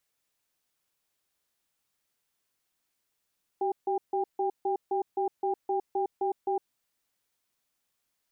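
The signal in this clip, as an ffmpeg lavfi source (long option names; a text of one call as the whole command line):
ffmpeg -f lavfi -i "aevalsrc='0.0398*(sin(2*PI*383*t)+sin(2*PI*798*t))*clip(min(mod(t,0.26),0.11-mod(t,0.26))/0.005,0,1)':duration=2.99:sample_rate=44100" out.wav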